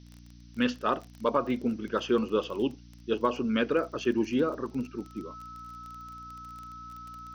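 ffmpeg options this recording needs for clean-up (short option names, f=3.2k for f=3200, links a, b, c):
-af "adeclick=t=4,bandreject=f=59.2:t=h:w=4,bandreject=f=118.4:t=h:w=4,bandreject=f=177.6:t=h:w=4,bandreject=f=236.8:t=h:w=4,bandreject=f=296:t=h:w=4,bandreject=f=1.3k:w=30,afftdn=nr=24:nf=-50"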